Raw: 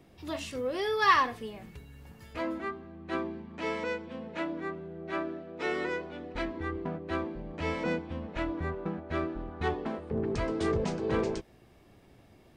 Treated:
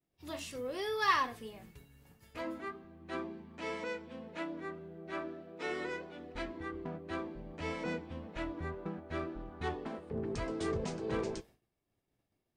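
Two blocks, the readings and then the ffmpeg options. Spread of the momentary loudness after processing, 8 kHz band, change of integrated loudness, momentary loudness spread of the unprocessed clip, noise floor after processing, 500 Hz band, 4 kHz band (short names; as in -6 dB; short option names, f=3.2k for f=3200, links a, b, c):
10 LU, n/a, -6.0 dB, 10 LU, -84 dBFS, -6.5 dB, -4.5 dB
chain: -af "agate=range=-33dB:threshold=-45dB:ratio=3:detection=peak,flanger=delay=5.9:depth=2.3:regen=-75:speed=1.8:shape=triangular,highshelf=f=6.4k:g=9,volume=-2dB"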